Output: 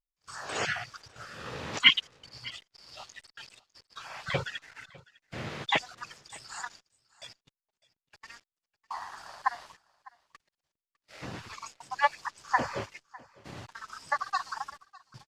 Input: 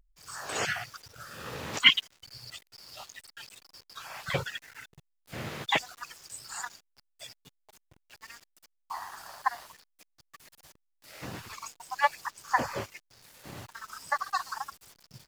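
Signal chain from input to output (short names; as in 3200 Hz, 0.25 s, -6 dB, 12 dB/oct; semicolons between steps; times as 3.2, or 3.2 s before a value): LPF 6300 Hz 12 dB/oct; gate -52 dBFS, range -28 dB; on a send: echo 0.603 s -22.5 dB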